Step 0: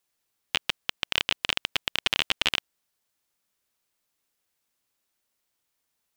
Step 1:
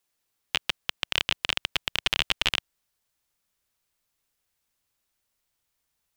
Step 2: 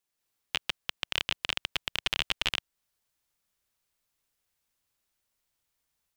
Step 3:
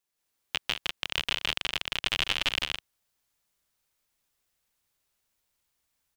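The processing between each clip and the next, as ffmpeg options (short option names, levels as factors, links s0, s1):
-af "asubboost=boost=2.5:cutoff=140"
-af "dynaudnorm=f=130:g=3:m=1.78,volume=0.447"
-af "aecho=1:1:163.3|204.1:0.794|0.282"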